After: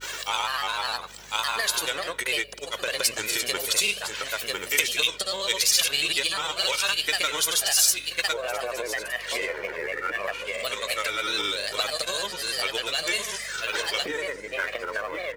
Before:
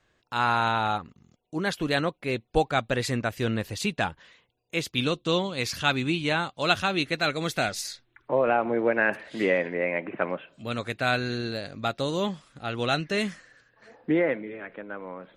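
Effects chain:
gain on one half-wave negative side −3 dB
in parallel at +0.5 dB: upward compression, threshold −28 dBFS
on the sum: high-pass filter 250 Hz 12 dB per octave
high-shelf EQ 6,400 Hz +7.5 dB
comb filter 1.9 ms, depth 75%
single-tap delay 1,037 ms −12 dB
brickwall limiter −11 dBFS, peak gain reduction 10 dB
downward compressor 12 to 1, threshold −32 dBFS, peak gain reduction 17 dB
spectral tilt +4 dB per octave
on a send at −12.5 dB: convolution reverb RT60 0.95 s, pre-delay 7 ms
on the sum: granular cloud, pitch spread up and down by 3 semitones
mains hum 50 Hz, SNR 28 dB
level +7.5 dB

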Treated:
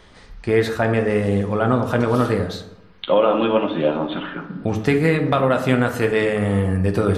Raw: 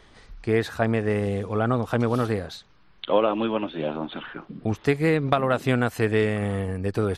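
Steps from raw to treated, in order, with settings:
speech leveller within 3 dB 2 s
on a send at −4 dB: convolution reverb RT60 0.90 s, pre-delay 3 ms
on the sum: boost into a limiter +9 dB
level −5 dB

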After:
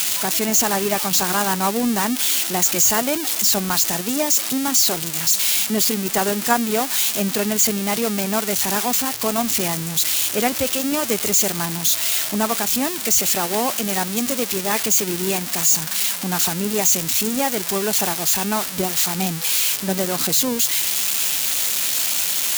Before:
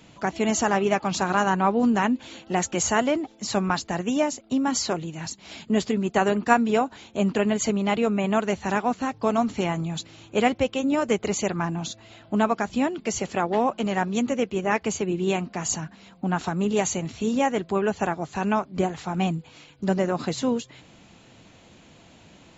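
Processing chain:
spike at every zero crossing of −10 dBFS

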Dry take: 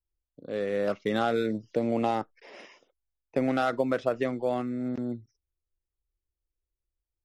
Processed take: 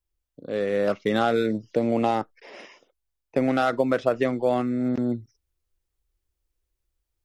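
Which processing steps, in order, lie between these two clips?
speech leveller 2 s
level +5 dB

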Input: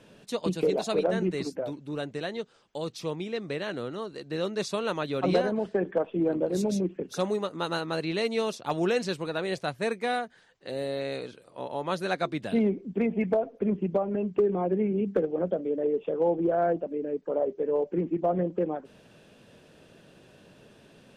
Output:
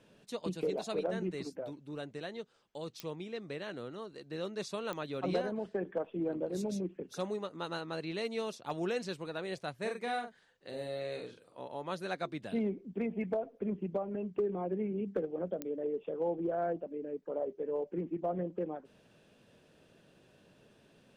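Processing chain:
0:07.27–0:08.07: Bessel low-pass filter 9,100 Hz
0:09.78–0:11.60: double-tracking delay 42 ms −5 dB
digital clicks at 0:03.00/0:04.93/0:15.62, −14 dBFS
level −8.5 dB

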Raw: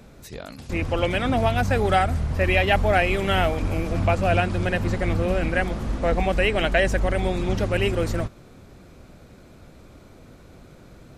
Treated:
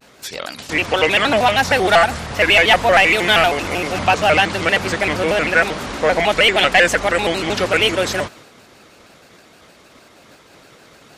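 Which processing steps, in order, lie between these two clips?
high-pass filter 120 Hz 6 dB per octave
high-shelf EQ 2,500 Hz +11.5 dB
downward expander −43 dBFS
mid-hump overdrive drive 14 dB, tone 3,000 Hz, clips at −2.5 dBFS
pitch modulation by a square or saw wave square 6.4 Hz, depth 160 cents
level +2 dB

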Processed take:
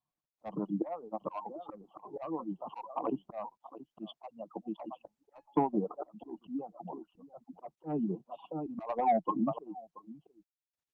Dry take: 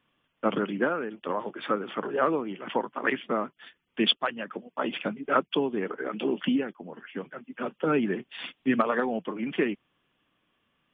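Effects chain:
spectral dynamics exaggerated over time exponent 1.5
elliptic band-stop filter 1,100–3,100 Hz, stop band 50 dB
0:01.95–0:02.62: downward compressor 3 to 1, threshold −31 dBFS, peak gain reduction 6.5 dB
drawn EQ curve 100 Hz 0 dB, 150 Hz +10 dB, 380 Hz −14 dB, 730 Hz +9 dB, 3,900 Hz −28 dB
single-tap delay 680 ms −17.5 dB
mid-hump overdrive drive 19 dB, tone 3,000 Hz, clips at −11.5 dBFS
volume swells 466 ms
0:05.07–0:05.57: tuned comb filter 850 Hz, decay 0.3 s, mix 90%
reverb reduction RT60 1.1 s
0:03.56–0:04.10: high-pass filter 51 Hz 6 dB per octave
parametric band 320 Hz +14 dB 0.41 octaves
Opus 48 kbit/s 48,000 Hz

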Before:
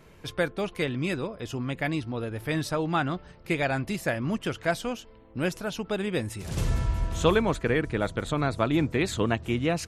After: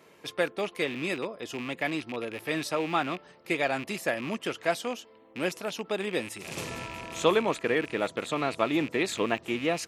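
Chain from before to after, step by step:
loose part that buzzes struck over −35 dBFS, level −28 dBFS
high-pass filter 280 Hz 12 dB per octave
notch filter 1,500 Hz, Q 14

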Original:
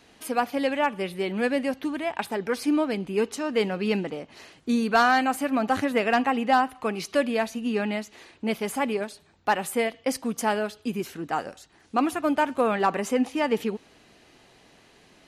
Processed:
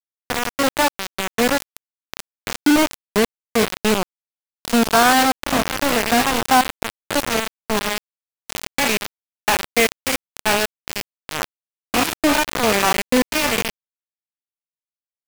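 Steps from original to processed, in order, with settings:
spectrum averaged block by block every 100 ms
parametric band 2,400 Hz −2 dB 0.48 octaves, from 0:08.66 +12.5 dB
bit reduction 4 bits
level +7 dB

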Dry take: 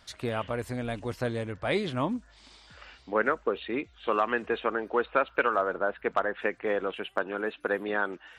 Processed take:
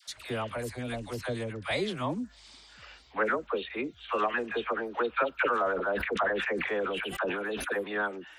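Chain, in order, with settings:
high-shelf EQ 2,800 Hz +7.5 dB
all-pass dispersion lows, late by 80 ms, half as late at 750 Hz
0:05.32–0:07.73: level that may fall only so fast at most 31 dB per second
level −3 dB

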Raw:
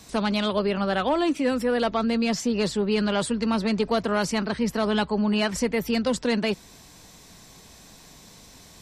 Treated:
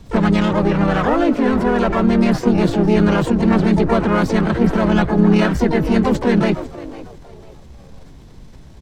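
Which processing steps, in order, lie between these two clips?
RIAA equalisation playback
on a send: echo with shifted repeats 498 ms, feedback 32%, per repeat +110 Hz, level −15.5 dB
on the sum: pitch-shifted copies added −3 semitones −2 dB, +7 semitones −10 dB, +12 semitones −11 dB
dynamic equaliser 1,600 Hz, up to +6 dB, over −40 dBFS, Q 1.1
in parallel at −5.5 dB: dead-zone distortion −29.5 dBFS
on the sum: transient designer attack +1 dB, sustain +5 dB
level −3.5 dB

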